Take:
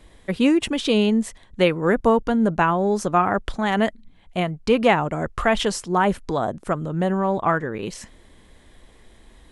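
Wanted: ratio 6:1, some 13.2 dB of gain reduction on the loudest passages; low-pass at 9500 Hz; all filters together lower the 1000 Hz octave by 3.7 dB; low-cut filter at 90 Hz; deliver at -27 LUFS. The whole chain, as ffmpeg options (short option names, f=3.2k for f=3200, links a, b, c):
-af "highpass=90,lowpass=9.5k,equalizer=f=1k:t=o:g=-5,acompressor=threshold=-28dB:ratio=6,volume=5.5dB"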